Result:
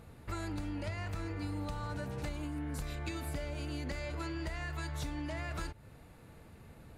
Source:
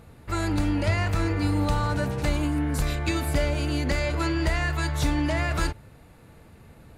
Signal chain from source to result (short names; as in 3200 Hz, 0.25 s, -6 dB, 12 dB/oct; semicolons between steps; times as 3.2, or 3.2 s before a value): compressor 5:1, threshold -32 dBFS, peak gain reduction 12.5 dB; gain -4.5 dB